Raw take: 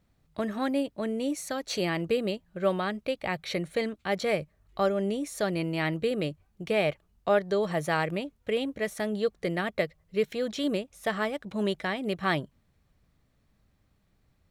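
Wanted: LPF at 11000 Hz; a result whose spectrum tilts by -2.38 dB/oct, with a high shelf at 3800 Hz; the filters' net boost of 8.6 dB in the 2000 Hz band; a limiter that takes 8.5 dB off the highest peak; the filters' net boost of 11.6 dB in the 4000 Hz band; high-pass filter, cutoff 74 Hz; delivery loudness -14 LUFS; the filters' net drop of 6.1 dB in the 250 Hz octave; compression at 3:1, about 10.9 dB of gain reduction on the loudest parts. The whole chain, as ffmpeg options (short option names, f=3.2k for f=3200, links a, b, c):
-af "highpass=74,lowpass=11k,equalizer=f=250:t=o:g=-8.5,equalizer=f=2k:t=o:g=6.5,highshelf=f=3.8k:g=8.5,equalizer=f=4k:t=o:g=7.5,acompressor=threshold=-33dB:ratio=3,volume=22.5dB,alimiter=limit=-1.5dB:level=0:latency=1"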